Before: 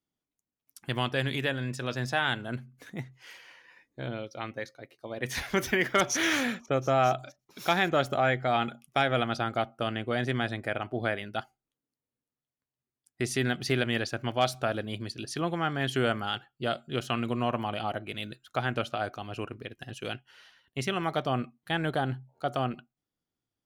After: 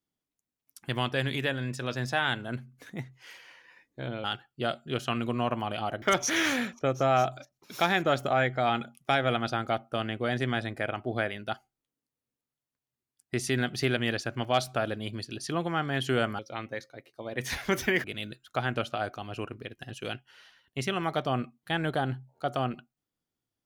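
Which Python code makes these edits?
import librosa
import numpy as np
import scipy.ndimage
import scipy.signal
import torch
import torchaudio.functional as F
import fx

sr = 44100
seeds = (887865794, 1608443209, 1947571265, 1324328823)

y = fx.edit(x, sr, fx.swap(start_s=4.24, length_s=1.65, other_s=16.26, other_length_s=1.78), tone=tone)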